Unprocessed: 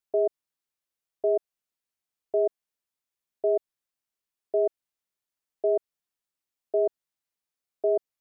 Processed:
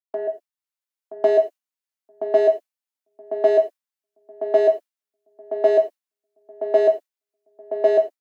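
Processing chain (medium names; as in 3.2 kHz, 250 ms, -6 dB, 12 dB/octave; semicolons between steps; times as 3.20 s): gate with hold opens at -28 dBFS; steep high-pass 210 Hz 48 dB/octave; peaking EQ 380 Hz -9.5 dB 0.95 oct; level rider gain up to 13.5 dB; in parallel at -6.5 dB: saturation -24 dBFS, distortion -7 dB; on the sum: filtered feedback delay 974 ms, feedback 16%, low-pass 810 Hz, level -8 dB; gated-style reverb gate 130 ms falling, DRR 4 dB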